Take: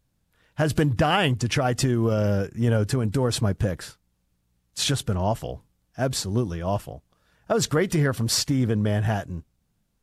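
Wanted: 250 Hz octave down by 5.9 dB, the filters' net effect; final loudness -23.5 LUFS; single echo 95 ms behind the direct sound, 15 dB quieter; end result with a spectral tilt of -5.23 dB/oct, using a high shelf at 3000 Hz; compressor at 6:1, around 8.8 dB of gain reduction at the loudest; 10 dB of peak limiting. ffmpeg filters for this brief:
-af "equalizer=f=250:t=o:g=-8.5,highshelf=f=3k:g=-7.5,acompressor=threshold=-29dB:ratio=6,alimiter=level_in=5dB:limit=-24dB:level=0:latency=1,volume=-5dB,aecho=1:1:95:0.178,volume=14.5dB"

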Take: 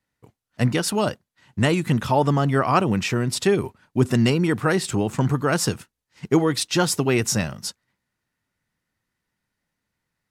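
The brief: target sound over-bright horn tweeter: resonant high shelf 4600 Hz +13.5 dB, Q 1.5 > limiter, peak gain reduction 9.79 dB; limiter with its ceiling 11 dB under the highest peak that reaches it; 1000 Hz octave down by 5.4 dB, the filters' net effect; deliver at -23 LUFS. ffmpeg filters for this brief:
-af "equalizer=f=1k:t=o:g=-6.5,alimiter=limit=-17.5dB:level=0:latency=1,highshelf=f=4.6k:t=q:w=1.5:g=13.5,volume=1.5dB,alimiter=limit=-10.5dB:level=0:latency=1"

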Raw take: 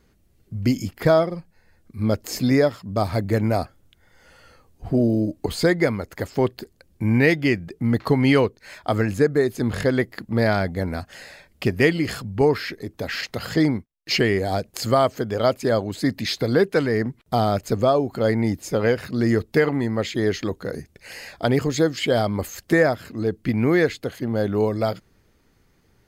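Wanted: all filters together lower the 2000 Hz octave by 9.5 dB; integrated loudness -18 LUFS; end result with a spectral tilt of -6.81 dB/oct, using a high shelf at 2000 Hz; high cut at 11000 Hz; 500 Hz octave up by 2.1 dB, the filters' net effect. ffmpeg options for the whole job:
-af "lowpass=11k,equalizer=f=500:t=o:g=3.5,highshelf=f=2k:g=-7.5,equalizer=f=2k:t=o:g=-7.5,volume=3.5dB"

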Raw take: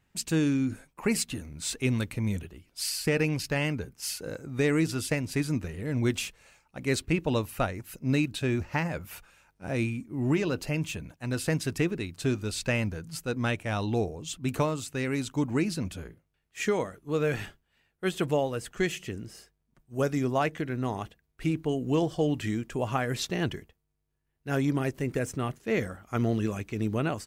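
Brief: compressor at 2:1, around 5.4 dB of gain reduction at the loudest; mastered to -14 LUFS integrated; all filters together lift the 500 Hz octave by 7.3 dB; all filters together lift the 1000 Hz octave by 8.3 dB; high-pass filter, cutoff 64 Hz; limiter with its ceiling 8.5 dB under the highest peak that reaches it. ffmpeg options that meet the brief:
-af "highpass=64,equalizer=f=500:t=o:g=7,equalizer=f=1k:t=o:g=8.5,acompressor=threshold=-25dB:ratio=2,volume=17dB,alimiter=limit=-2dB:level=0:latency=1"

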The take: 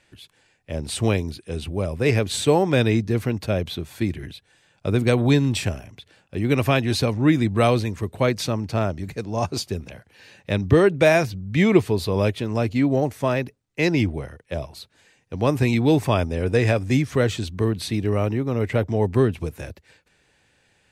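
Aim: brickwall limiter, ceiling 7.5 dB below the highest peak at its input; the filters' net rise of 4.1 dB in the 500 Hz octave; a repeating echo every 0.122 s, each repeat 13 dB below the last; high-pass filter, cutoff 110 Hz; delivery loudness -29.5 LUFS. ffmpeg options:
-af "highpass=110,equalizer=f=500:t=o:g=5,alimiter=limit=-9dB:level=0:latency=1,aecho=1:1:122|244|366:0.224|0.0493|0.0108,volume=-7.5dB"

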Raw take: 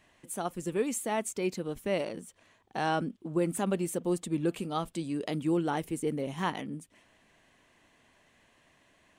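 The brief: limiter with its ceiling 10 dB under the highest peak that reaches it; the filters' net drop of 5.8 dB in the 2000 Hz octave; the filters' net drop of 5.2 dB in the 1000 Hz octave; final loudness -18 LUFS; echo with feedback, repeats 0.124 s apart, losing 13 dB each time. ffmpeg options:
-af "equalizer=f=1k:t=o:g=-6,equalizer=f=2k:t=o:g=-5.5,alimiter=level_in=5dB:limit=-24dB:level=0:latency=1,volume=-5dB,aecho=1:1:124|248|372:0.224|0.0493|0.0108,volume=20.5dB"

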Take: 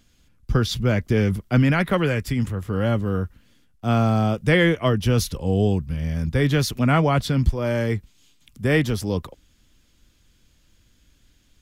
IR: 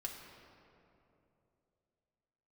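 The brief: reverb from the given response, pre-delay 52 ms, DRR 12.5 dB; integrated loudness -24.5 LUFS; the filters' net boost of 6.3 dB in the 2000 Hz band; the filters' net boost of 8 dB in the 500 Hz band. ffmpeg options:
-filter_complex "[0:a]equalizer=f=500:t=o:g=9,equalizer=f=2k:t=o:g=7,asplit=2[a][b];[1:a]atrim=start_sample=2205,adelay=52[c];[b][c]afir=irnorm=-1:irlink=0,volume=-11dB[d];[a][d]amix=inputs=2:normalize=0,volume=-7dB"

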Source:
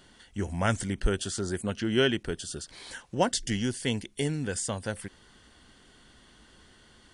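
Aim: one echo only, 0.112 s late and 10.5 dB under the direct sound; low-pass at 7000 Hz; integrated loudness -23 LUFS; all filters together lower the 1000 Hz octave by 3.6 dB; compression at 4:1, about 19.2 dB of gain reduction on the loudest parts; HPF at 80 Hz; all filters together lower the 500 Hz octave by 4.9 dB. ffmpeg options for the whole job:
-af "highpass=80,lowpass=7k,equalizer=f=500:t=o:g=-6,equalizer=f=1k:t=o:g=-3,acompressor=threshold=-46dB:ratio=4,aecho=1:1:112:0.299,volume=25dB"

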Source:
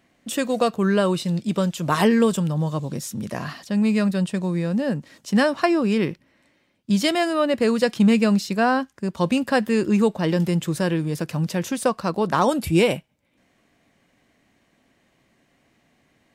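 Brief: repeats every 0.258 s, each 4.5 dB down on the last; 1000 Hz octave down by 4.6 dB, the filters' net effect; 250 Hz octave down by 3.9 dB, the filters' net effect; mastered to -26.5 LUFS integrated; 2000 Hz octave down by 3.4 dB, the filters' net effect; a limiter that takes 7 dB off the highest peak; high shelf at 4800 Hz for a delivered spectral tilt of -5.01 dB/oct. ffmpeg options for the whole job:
-af "equalizer=f=250:t=o:g=-5,equalizer=f=1k:t=o:g=-5.5,equalizer=f=2k:t=o:g=-3.5,highshelf=f=4.8k:g=6,alimiter=limit=-15.5dB:level=0:latency=1,aecho=1:1:258|516|774|1032|1290|1548|1806|2064|2322:0.596|0.357|0.214|0.129|0.0772|0.0463|0.0278|0.0167|0.01,volume=-2dB"

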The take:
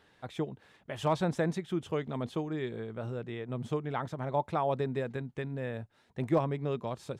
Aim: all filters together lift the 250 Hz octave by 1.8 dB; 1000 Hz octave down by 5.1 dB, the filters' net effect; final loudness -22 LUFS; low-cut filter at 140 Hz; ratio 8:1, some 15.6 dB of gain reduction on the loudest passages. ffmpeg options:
-af "highpass=140,equalizer=f=250:t=o:g=4,equalizer=f=1k:t=o:g=-7,acompressor=threshold=-38dB:ratio=8,volume=21.5dB"

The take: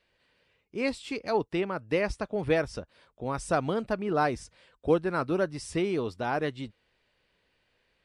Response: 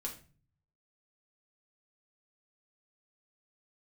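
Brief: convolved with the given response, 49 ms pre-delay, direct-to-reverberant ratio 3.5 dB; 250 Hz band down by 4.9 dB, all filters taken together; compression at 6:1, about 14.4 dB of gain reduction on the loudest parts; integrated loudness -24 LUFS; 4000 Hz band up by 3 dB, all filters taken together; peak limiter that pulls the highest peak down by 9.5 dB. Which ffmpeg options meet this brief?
-filter_complex "[0:a]equalizer=f=250:t=o:g=-7.5,equalizer=f=4k:t=o:g=4,acompressor=threshold=-37dB:ratio=6,alimiter=level_in=11.5dB:limit=-24dB:level=0:latency=1,volume=-11.5dB,asplit=2[a][b];[1:a]atrim=start_sample=2205,adelay=49[c];[b][c]afir=irnorm=-1:irlink=0,volume=-2.5dB[d];[a][d]amix=inputs=2:normalize=0,volume=20dB"

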